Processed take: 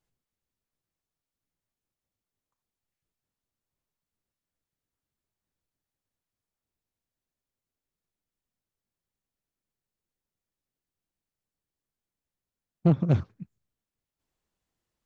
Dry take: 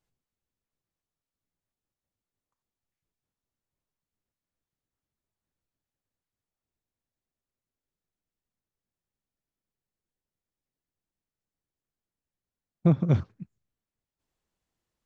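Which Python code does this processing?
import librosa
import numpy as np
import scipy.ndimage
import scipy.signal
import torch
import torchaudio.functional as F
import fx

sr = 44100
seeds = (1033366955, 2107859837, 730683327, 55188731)

y = fx.doppler_dist(x, sr, depth_ms=0.24)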